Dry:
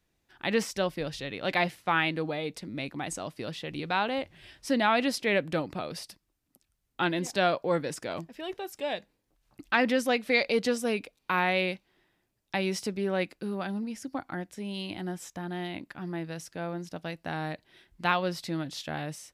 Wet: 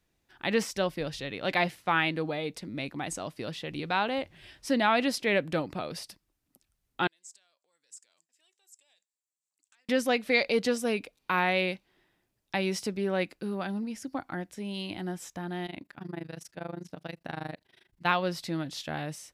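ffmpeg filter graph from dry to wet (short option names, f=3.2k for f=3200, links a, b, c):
-filter_complex "[0:a]asettb=1/sr,asplit=3[a][b][c];[a]atrim=end=7.074[d];[b]atrim=start=7.07:end=9.89,asetpts=PTS-STARTPTS,afade=t=in:d=0.004:c=qsin,afade=t=out:st=2.816:d=0.004:c=qsin,acompressor=threshold=-34dB:ratio=10:attack=3.2:release=140:knee=1:detection=peak,asoftclip=type=hard:threshold=-26dB,bandpass=f=7.6k:t=q:w=5.7[e];[c]atrim=start=9.886[f];[d][e]acrossfade=d=0.004:c1=hsin:c2=qsin[g];[g][f]acrossfade=d=0.004:c1=qsin:c2=hsin,asettb=1/sr,asplit=3[h][i][j];[h]atrim=end=15.664[k];[i]atrim=start=15.66:end=18.06,asetpts=PTS-STARTPTS,afade=t=in:d=0.004:c=qsin,afade=t=out:st=2.396:d=0.004:c=qsin,highpass=47,tremolo=f=25:d=0.947[l];[j]atrim=start=18.056[m];[k][l]acrossfade=d=0.004:c1=hsin:c2=qsin[n];[n][m]acrossfade=d=0.004:c1=qsin:c2=hsin"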